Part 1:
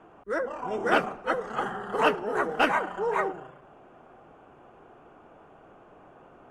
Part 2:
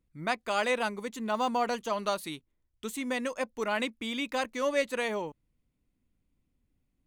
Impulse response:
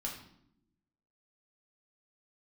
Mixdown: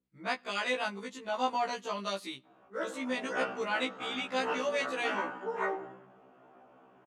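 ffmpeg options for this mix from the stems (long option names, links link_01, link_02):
-filter_complex "[0:a]adelay=2450,volume=-7dB,asplit=2[link_01][link_02];[link_02]volume=-4.5dB[link_03];[1:a]adynamicequalizer=threshold=0.01:dfrequency=1800:dqfactor=0.7:tfrequency=1800:tqfactor=0.7:attack=5:release=100:ratio=0.375:range=2:mode=boostabove:tftype=highshelf,volume=-2dB,asplit=3[link_04][link_05][link_06];[link_05]volume=-22dB[link_07];[link_06]apad=whole_len=395093[link_08];[link_01][link_08]sidechaincompress=threshold=-39dB:ratio=8:attack=5.5:release=522[link_09];[2:a]atrim=start_sample=2205[link_10];[link_03][link_07]amix=inputs=2:normalize=0[link_11];[link_11][link_10]afir=irnorm=-1:irlink=0[link_12];[link_09][link_04][link_12]amix=inputs=3:normalize=0,highpass=150,lowpass=6500,afftfilt=real='re*1.73*eq(mod(b,3),0)':imag='im*1.73*eq(mod(b,3),0)':win_size=2048:overlap=0.75"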